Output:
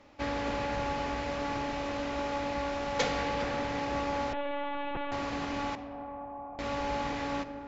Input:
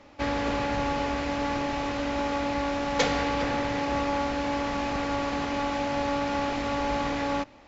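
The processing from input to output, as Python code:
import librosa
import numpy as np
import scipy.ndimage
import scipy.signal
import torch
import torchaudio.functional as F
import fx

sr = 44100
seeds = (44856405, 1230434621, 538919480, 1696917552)

y = fx.formant_cascade(x, sr, vowel='a', at=(5.75, 6.59))
y = fx.rev_freeverb(y, sr, rt60_s=5.0, hf_ratio=0.25, predelay_ms=5, drr_db=10.5)
y = fx.lpc_vocoder(y, sr, seeds[0], excitation='pitch_kept', order=16, at=(4.33, 5.12))
y = F.gain(torch.from_numpy(y), -5.0).numpy()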